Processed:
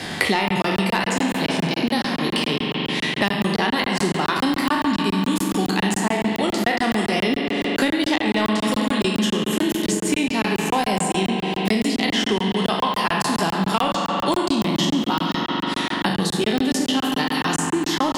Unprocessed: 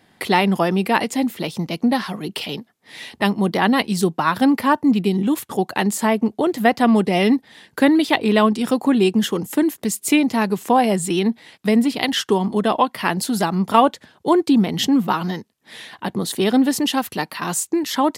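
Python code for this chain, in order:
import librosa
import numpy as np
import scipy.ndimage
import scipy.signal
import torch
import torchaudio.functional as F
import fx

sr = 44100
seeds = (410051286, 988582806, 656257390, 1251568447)

y = fx.spec_trails(x, sr, decay_s=0.57)
y = fx.peak_eq(y, sr, hz=150.0, db=3.5, octaves=2.0)
y = fx.hum_notches(y, sr, base_hz=60, count=4)
y = fx.rev_spring(y, sr, rt60_s=3.4, pass_ms=(42,), chirp_ms=40, drr_db=2.5)
y = 10.0 ** (0.0 / 20.0) * np.tanh(y / 10.0 ** (0.0 / 20.0))
y = scipy.signal.sosfilt(scipy.signal.butter(2, 7800.0, 'lowpass', fs=sr, output='sos'), y)
y = fx.high_shelf(y, sr, hz=2600.0, db=10.0)
y = fx.buffer_crackle(y, sr, first_s=0.48, period_s=0.14, block=1024, kind='zero')
y = fx.band_squash(y, sr, depth_pct=100)
y = F.gain(torch.from_numpy(y), -8.0).numpy()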